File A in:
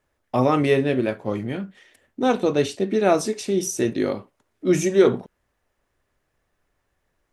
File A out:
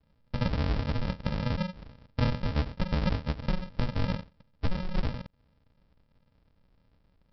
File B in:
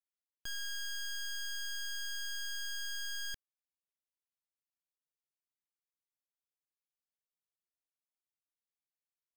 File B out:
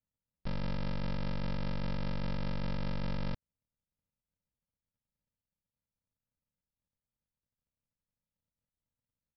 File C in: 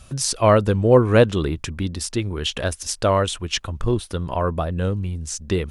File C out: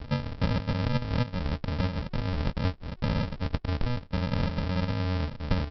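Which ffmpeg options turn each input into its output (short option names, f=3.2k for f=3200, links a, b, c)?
-af "acompressor=threshold=-31dB:ratio=12,aresample=11025,acrusher=samples=30:mix=1:aa=0.000001,aresample=44100,volume=7dB"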